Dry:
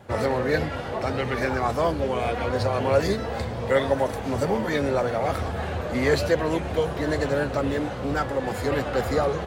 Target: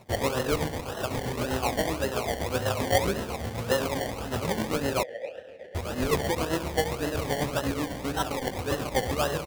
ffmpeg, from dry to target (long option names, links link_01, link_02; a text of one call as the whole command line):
ffmpeg -i in.wav -filter_complex "[0:a]tremolo=f=7.8:d=0.71,asplit=2[link_01][link_02];[link_02]aecho=0:1:69|138|207|276|345|414|483:0.335|0.201|0.121|0.0724|0.0434|0.026|0.0156[link_03];[link_01][link_03]amix=inputs=2:normalize=0,acrusher=samples=27:mix=1:aa=0.000001:lfo=1:lforange=16.2:lforate=1.8,asettb=1/sr,asplit=3[link_04][link_05][link_06];[link_04]atrim=end=5.034[link_07];[link_05]atrim=start=5.03:end=5.75,asetpts=PTS-STARTPTS,afade=type=in:duration=0.004:curve=qsin,afade=type=out:start_time=0.716:duration=0.004:curve=qsin,asplit=3[link_08][link_09][link_10];[link_08]bandpass=frequency=530:width_type=q:width=8,volume=0dB[link_11];[link_09]bandpass=frequency=1840:width_type=q:width=8,volume=-6dB[link_12];[link_10]bandpass=frequency=2480:width_type=q:width=8,volume=-9dB[link_13];[link_11][link_12][link_13]amix=inputs=3:normalize=0[link_14];[link_06]atrim=start=5.746[link_15];[link_07][link_14]acrossfade=duration=0.004:curve1=hsin:curve2=qsin[link_16];[link_16][link_15]acrossfade=duration=0.004:curve1=qsin:curve2=hsin,volume=-1.5dB" out.wav